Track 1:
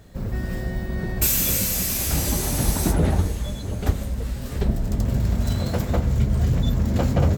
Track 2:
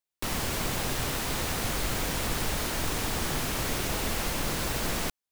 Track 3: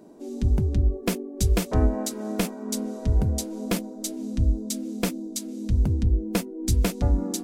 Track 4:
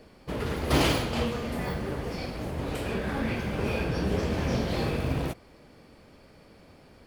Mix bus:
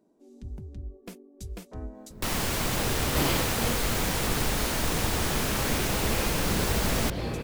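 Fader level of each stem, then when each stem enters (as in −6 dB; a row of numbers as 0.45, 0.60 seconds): −19.0, +2.0, −17.5, −4.5 decibels; 1.95, 2.00, 0.00, 2.45 seconds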